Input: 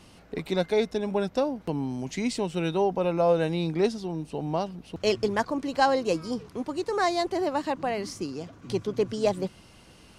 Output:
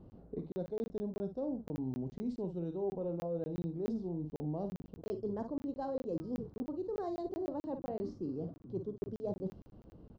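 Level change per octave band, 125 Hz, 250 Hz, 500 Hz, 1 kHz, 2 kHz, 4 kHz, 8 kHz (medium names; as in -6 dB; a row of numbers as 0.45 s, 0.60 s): -8.0 dB, -8.5 dB, -12.5 dB, -19.0 dB, -28.5 dB, under -25 dB, under -25 dB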